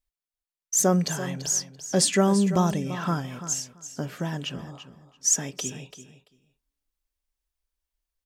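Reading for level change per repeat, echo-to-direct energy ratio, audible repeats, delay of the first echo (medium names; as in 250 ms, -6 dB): -16.0 dB, -12.5 dB, 2, 338 ms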